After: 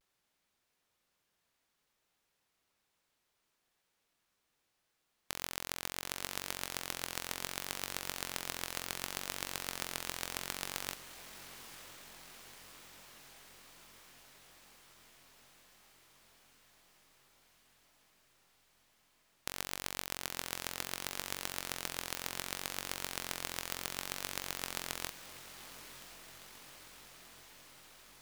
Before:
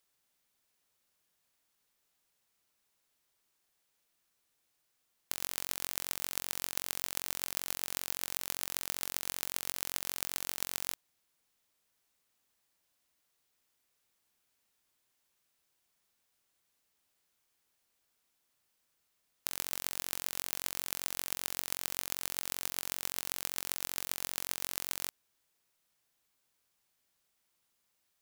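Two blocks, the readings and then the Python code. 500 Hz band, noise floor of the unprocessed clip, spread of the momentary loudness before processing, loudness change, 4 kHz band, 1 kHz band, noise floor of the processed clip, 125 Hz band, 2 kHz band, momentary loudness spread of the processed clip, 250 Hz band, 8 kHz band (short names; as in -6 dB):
+3.0 dB, -79 dBFS, 1 LU, -4.5 dB, 0.0 dB, +2.5 dB, -81 dBFS, +3.0 dB, +2.0 dB, 17 LU, +3.0 dB, -3.5 dB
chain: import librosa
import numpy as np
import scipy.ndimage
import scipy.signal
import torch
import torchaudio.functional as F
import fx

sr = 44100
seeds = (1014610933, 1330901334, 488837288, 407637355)

y = fx.high_shelf(x, sr, hz=5800.0, db=-10.0)
y = fx.vibrato(y, sr, rate_hz=0.67, depth_cents=58.0)
y = fx.echo_diffused(y, sr, ms=947, feedback_pct=73, wet_db=-13.0)
y = y * librosa.db_to_amplitude(2.5)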